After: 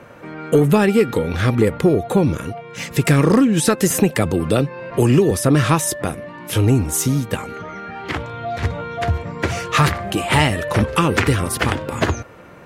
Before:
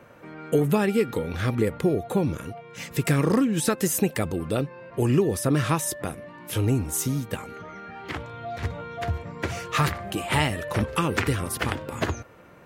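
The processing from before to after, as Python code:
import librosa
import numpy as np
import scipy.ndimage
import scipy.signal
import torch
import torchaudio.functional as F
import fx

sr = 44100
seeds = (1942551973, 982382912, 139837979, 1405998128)

y = 10.0 ** (-11.5 / 20.0) * np.tanh(x / 10.0 ** (-11.5 / 20.0))
y = scipy.signal.sosfilt(scipy.signal.bessel(2, 12000.0, 'lowpass', norm='mag', fs=sr, output='sos'), y)
y = fx.band_squash(y, sr, depth_pct=40, at=(3.9, 5.31))
y = y * librosa.db_to_amplitude(8.5)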